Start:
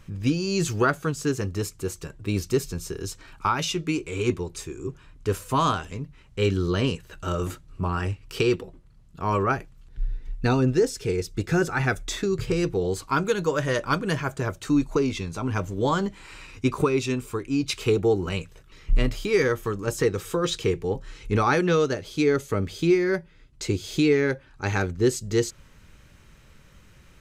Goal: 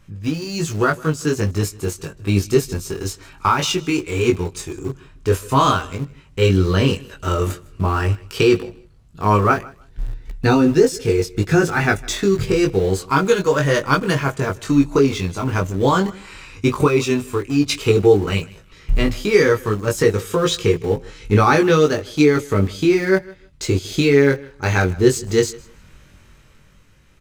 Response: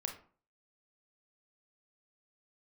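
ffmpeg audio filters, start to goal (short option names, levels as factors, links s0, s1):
-filter_complex "[0:a]dynaudnorm=f=150:g=13:m=2.24,flanger=delay=19:depth=2.8:speed=0.1,asplit=2[s0][s1];[s1]aeval=exprs='val(0)*gte(abs(val(0)),0.0501)':c=same,volume=0.299[s2];[s0][s2]amix=inputs=2:normalize=0,aecho=1:1:156|312:0.075|0.0135,volume=1.19"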